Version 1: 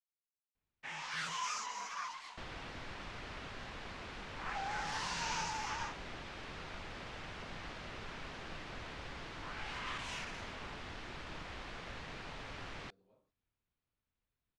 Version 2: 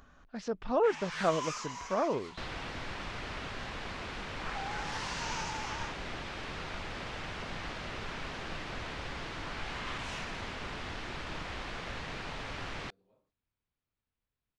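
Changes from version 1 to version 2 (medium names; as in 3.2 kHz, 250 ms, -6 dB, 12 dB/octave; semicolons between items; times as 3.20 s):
speech: unmuted; second sound +6.5 dB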